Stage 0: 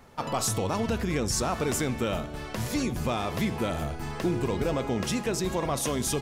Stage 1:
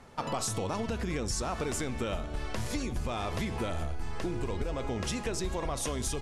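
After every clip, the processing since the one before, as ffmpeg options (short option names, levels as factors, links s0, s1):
-af "asubboost=boost=6.5:cutoff=61,acompressor=threshold=0.0355:ratio=6,lowpass=f=11000:w=0.5412,lowpass=f=11000:w=1.3066"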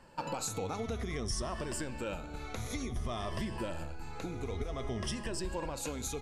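-af "afftfilt=real='re*pow(10,11/40*sin(2*PI*(1.3*log(max(b,1)*sr/1024/100)/log(2)-(-0.55)*(pts-256)/sr)))':imag='im*pow(10,11/40*sin(2*PI*(1.3*log(max(b,1)*sr/1024/100)/log(2)-(-0.55)*(pts-256)/sr)))':win_size=1024:overlap=0.75,volume=0.531"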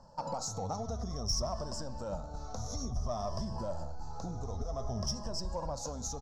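-filter_complex "[0:a]firequalizer=gain_entry='entry(190,0);entry(350,-12);entry(610,4);entry(1200,-3);entry(2200,-30);entry(5500,8);entry(8900,-18)':delay=0.05:min_phase=1,asplit=2[s0][s1];[s1]asoftclip=type=tanh:threshold=0.0335,volume=0.631[s2];[s0][s2]amix=inputs=2:normalize=0,aphaser=in_gain=1:out_gain=1:delay=4.7:decay=0.21:speed=1.4:type=triangular,volume=0.708"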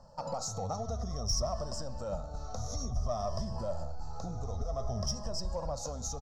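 -af "aecho=1:1:1.6:0.35"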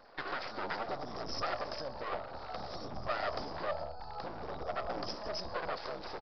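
-af "aeval=exprs='abs(val(0))':c=same,aresample=11025,aresample=44100,bass=f=250:g=-15,treble=f=4000:g=1,volume=1.68"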